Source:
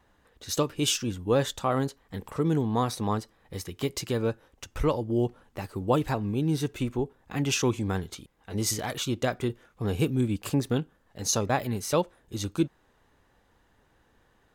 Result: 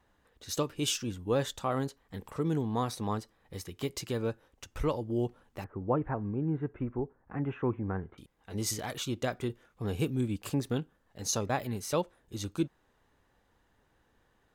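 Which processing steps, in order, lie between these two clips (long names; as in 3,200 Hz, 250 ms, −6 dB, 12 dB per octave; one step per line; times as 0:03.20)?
0:05.64–0:08.18: inverse Chebyshev low-pass filter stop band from 4,500 Hz, stop band 50 dB
level −5 dB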